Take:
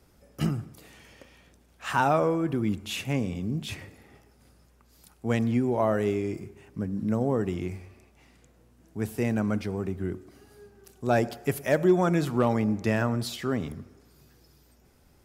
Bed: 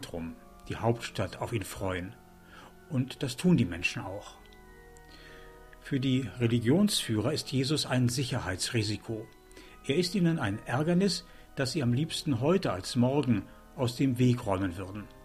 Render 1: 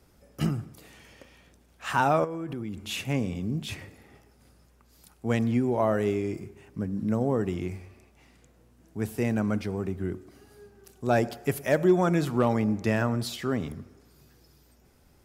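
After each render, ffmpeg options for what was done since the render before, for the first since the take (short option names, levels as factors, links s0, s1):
-filter_complex "[0:a]asettb=1/sr,asplit=3[s0][s1][s2];[s0]atrim=end=2.244[s3];[s1]atrim=start=2.24:end=2.82,asetpts=PTS-STARTPTS,afade=t=in:d=0.004:c=qsin,afade=t=out:st=0.576:d=0.004:c=qsin,acompressor=threshold=0.0316:ratio=10:attack=3.2:release=140:knee=1:detection=peak[s4];[s2]atrim=start=2.816[s5];[s3][s4]acrossfade=d=0.004:c1=hsin:c2=qsin[s6];[s6][s5]acrossfade=d=0.004:c1=qsin:c2=hsin"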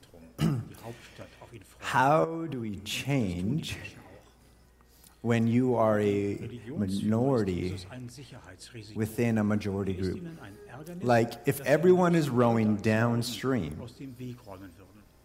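-filter_complex "[1:a]volume=0.168[s0];[0:a][s0]amix=inputs=2:normalize=0"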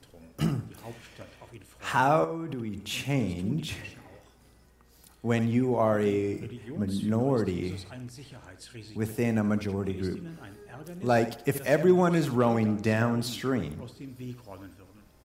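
-af "aecho=1:1:72:0.237"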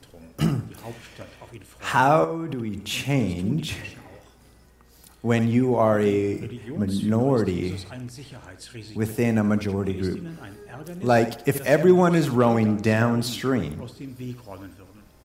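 -af "volume=1.78"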